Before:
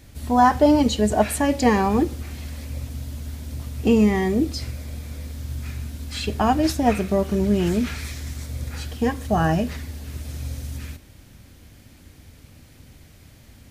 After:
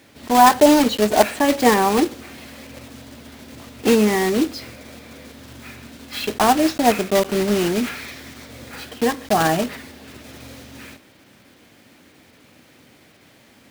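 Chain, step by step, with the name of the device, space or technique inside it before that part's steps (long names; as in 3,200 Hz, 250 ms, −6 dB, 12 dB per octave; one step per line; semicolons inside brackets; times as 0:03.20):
early digital voice recorder (band-pass filter 270–3,800 Hz; one scale factor per block 3 bits)
level +4.5 dB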